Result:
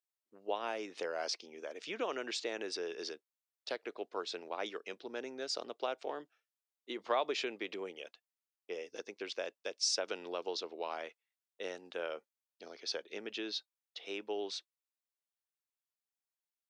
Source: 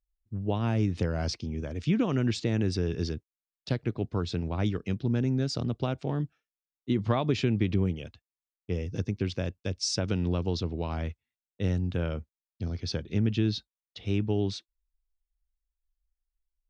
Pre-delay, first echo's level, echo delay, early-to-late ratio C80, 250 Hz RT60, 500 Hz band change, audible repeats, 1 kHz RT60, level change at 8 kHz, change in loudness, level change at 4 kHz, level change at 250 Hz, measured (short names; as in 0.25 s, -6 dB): none, none, none, none, none, -5.0 dB, none, none, -2.0 dB, -9.5 dB, -2.0 dB, -19.0 dB